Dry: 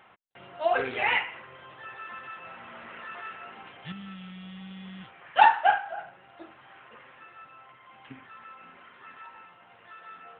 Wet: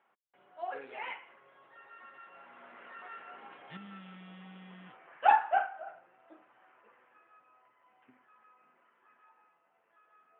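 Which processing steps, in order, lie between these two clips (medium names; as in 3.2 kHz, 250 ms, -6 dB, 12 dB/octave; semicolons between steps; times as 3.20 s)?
Doppler pass-by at 4.16 s, 15 m/s, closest 13 m; band-pass 280–3100 Hz; treble shelf 2.3 kHz -9 dB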